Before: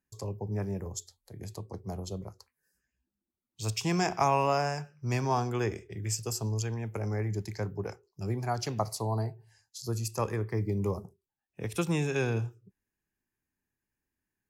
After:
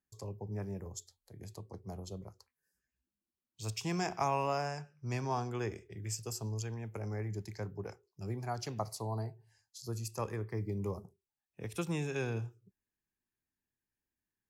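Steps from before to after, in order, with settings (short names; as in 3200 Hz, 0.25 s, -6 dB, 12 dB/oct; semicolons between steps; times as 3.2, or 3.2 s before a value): 4.67–5.64 Bessel low-pass 11000 Hz, order 2; gain -6.5 dB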